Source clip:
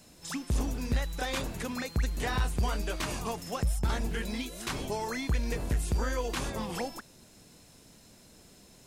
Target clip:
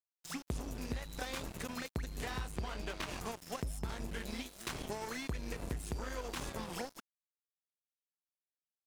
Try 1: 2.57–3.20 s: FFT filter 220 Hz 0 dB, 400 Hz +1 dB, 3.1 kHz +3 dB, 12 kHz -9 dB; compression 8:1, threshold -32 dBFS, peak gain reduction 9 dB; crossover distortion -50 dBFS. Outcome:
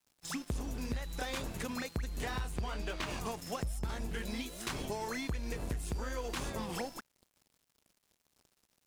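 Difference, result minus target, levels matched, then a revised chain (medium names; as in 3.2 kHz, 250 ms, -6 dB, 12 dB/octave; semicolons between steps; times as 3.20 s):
crossover distortion: distortion -9 dB
2.57–3.20 s: FFT filter 220 Hz 0 dB, 400 Hz +1 dB, 3.1 kHz +3 dB, 12 kHz -9 dB; compression 8:1, threshold -32 dBFS, peak gain reduction 9 dB; crossover distortion -40.5 dBFS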